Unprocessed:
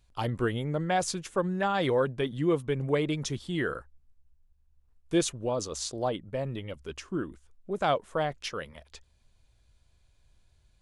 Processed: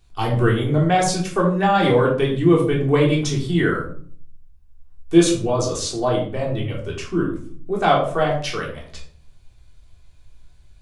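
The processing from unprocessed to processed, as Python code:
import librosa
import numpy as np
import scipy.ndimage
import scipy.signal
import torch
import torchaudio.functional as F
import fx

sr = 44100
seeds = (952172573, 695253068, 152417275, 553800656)

y = fx.room_shoebox(x, sr, seeds[0], volume_m3=510.0, walls='furnished', distance_m=3.5)
y = y * 10.0 ** (4.5 / 20.0)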